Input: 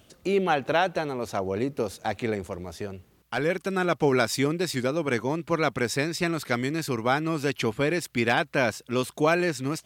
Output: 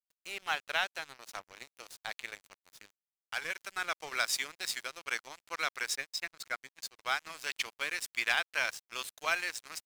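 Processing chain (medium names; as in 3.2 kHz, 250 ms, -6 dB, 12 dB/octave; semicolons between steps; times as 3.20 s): 5.95–6.99 s: spectral contrast enhancement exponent 1.6; high-pass 1.5 kHz 12 dB/octave; crossover distortion -42 dBFS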